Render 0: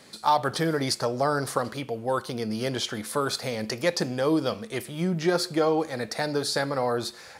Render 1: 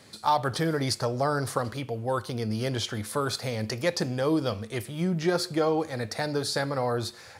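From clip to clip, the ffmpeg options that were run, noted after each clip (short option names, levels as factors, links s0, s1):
-af "equalizer=f=100:w=2.4:g=13,volume=0.794"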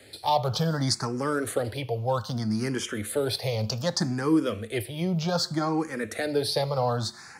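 -filter_complex "[0:a]acrossover=split=230|940|2000[s0][s1][s2][s3];[s2]asoftclip=type=tanh:threshold=0.015[s4];[s0][s1][s4][s3]amix=inputs=4:normalize=0,asplit=2[s5][s6];[s6]afreqshift=0.64[s7];[s5][s7]amix=inputs=2:normalize=1,volume=1.68"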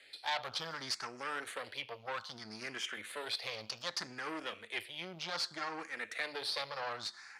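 -af "aeval=exprs='(tanh(15.8*val(0)+0.75)-tanh(0.75))/15.8':c=same,bandpass=f=2500:t=q:w=1.1:csg=0,volume=1.26"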